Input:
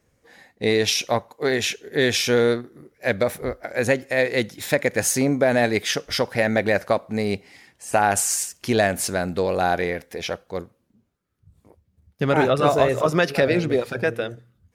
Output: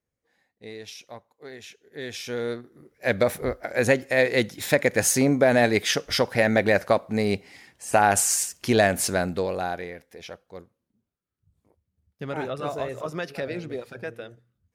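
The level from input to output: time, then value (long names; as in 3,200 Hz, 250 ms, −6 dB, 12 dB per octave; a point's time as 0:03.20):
0:01.66 −20 dB
0:02.46 −10.5 dB
0:03.19 0 dB
0:09.20 0 dB
0:09.90 −12 dB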